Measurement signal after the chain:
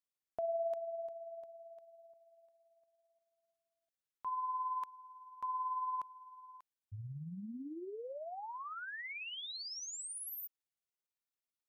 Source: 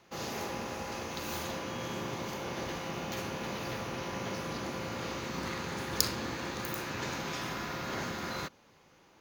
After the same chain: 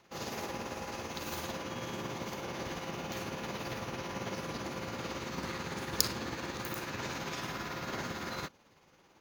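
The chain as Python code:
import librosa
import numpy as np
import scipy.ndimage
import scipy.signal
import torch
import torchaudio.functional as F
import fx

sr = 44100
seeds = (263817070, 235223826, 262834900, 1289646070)

y = x * (1.0 - 0.4 / 2.0 + 0.4 / 2.0 * np.cos(2.0 * np.pi * 18.0 * (np.arange(len(x)) / sr)))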